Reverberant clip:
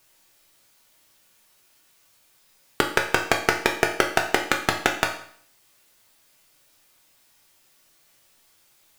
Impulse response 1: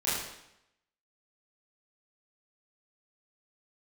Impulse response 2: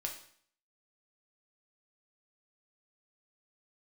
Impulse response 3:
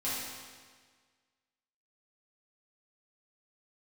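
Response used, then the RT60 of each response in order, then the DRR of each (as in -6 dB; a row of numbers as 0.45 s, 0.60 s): 2; 0.80 s, 0.55 s, 1.6 s; -11.0 dB, 1.0 dB, -10.5 dB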